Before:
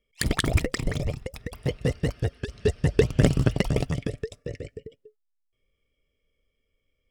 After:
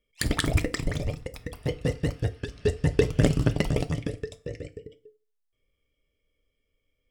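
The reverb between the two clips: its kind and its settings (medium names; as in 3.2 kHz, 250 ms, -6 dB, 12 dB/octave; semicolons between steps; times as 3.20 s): FDN reverb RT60 0.36 s, low-frequency decay 1×, high-frequency decay 0.9×, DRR 10 dB; trim -1.5 dB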